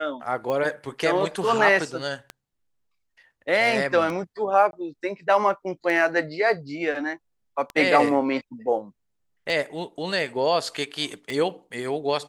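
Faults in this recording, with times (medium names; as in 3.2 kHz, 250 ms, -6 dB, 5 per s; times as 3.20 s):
tick 33 1/3 rpm -17 dBFS
4.71–4.73 s: dropout 21 ms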